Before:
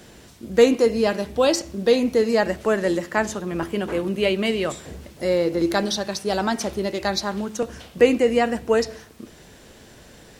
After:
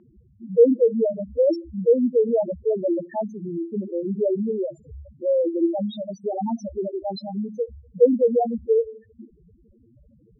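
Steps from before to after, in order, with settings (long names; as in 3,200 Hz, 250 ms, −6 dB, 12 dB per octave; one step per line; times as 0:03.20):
spectral peaks only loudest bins 2
low-pass that shuts in the quiet parts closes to 1,800 Hz, open at −17.5 dBFS
level +2 dB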